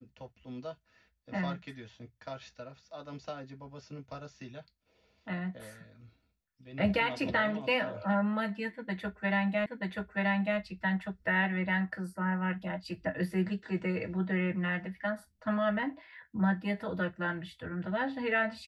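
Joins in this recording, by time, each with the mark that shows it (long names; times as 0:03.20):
0:09.66: the same again, the last 0.93 s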